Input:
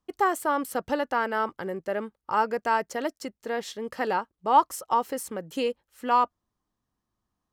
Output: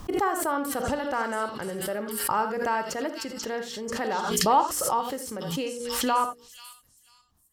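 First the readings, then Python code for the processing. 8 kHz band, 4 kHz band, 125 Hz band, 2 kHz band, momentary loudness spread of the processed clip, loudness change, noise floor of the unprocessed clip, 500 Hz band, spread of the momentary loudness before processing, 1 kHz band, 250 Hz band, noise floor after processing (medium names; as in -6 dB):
+10.0 dB, +6.5 dB, no reading, -0.5 dB, 10 LU, 0.0 dB, -84 dBFS, 0.0 dB, 11 LU, -1.5 dB, +2.0 dB, -63 dBFS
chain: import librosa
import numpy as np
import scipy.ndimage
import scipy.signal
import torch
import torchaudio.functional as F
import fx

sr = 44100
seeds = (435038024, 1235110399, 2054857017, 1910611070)

y = fx.low_shelf(x, sr, hz=180.0, db=8.5)
y = fx.hum_notches(y, sr, base_hz=60, count=8)
y = fx.echo_stepped(y, sr, ms=488, hz=4400.0, octaves=0.7, feedback_pct=70, wet_db=0.0)
y = fx.rev_gated(y, sr, seeds[0], gate_ms=100, shape='rising', drr_db=7.0)
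y = fx.pre_swell(y, sr, db_per_s=37.0)
y = y * librosa.db_to_amplitude(-3.5)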